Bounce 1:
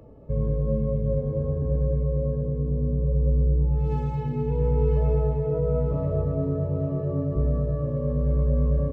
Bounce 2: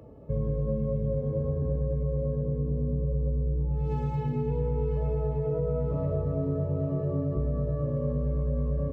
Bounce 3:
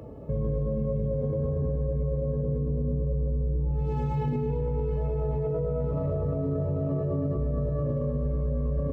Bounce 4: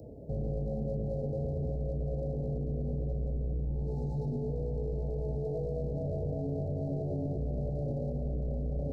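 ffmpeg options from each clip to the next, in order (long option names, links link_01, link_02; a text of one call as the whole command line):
ffmpeg -i in.wav -af "highpass=54,acompressor=threshold=-24dB:ratio=6" out.wav
ffmpeg -i in.wav -af "alimiter=level_in=4dB:limit=-24dB:level=0:latency=1:release=17,volume=-4dB,volume=6.5dB" out.wav
ffmpeg -i in.wav -af "aeval=exprs='clip(val(0),-1,0.0398)':channel_layout=same,asuperstop=centerf=1800:order=20:qfactor=0.56,volume=-4.5dB" out.wav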